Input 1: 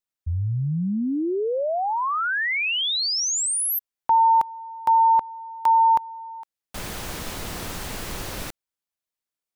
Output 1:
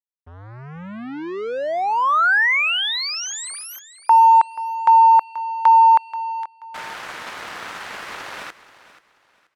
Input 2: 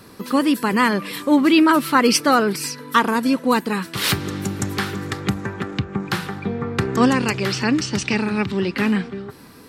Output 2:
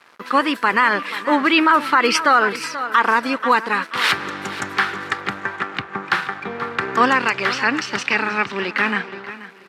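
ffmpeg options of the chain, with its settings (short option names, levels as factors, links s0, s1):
-af "areverse,acompressor=mode=upward:threshold=0.0178:ratio=2.5:attack=1.1:release=56:knee=2.83:detection=peak,areverse,aeval=exprs='sgn(val(0))*max(abs(val(0))-0.0106,0)':c=same,bandpass=f=1500:t=q:w=1.1:csg=0,aecho=1:1:482|964|1446:0.158|0.0444|0.0124,alimiter=level_in=4.73:limit=0.891:release=50:level=0:latency=1,volume=0.668"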